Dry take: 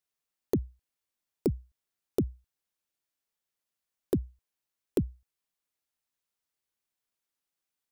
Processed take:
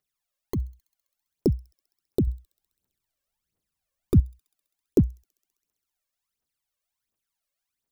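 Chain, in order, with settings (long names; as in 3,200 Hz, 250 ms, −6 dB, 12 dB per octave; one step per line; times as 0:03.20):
0:02.27–0:04.20: low-shelf EQ 440 Hz +10.5 dB
phase shifter 1.4 Hz, delay 1.9 ms, feedback 75%
delay with a high-pass on its return 66 ms, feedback 80%, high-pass 4,100 Hz, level −22 dB
level −1.5 dB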